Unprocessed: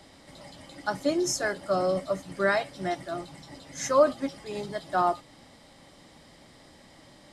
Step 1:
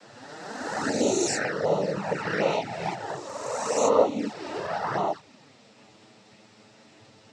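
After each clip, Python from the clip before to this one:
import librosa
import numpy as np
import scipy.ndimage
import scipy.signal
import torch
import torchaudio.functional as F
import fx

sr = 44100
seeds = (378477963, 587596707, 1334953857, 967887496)

y = fx.spec_swells(x, sr, rise_s=1.96)
y = fx.noise_vocoder(y, sr, seeds[0], bands=12)
y = fx.env_flanger(y, sr, rest_ms=10.5, full_db=-19.0)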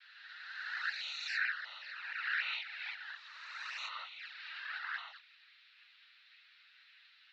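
y = scipy.signal.sosfilt(scipy.signal.ellip(3, 1.0, 60, [1500.0, 4100.0], 'bandpass', fs=sr, output='sos'), x)
y = y * librosa.db_to_amplitude(-1.5)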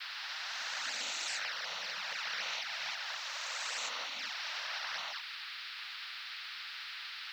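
y = fx.spectral_comp(x, sr, ratio=4.0)
y = y * librosa.db_to_amplitude(-2.0)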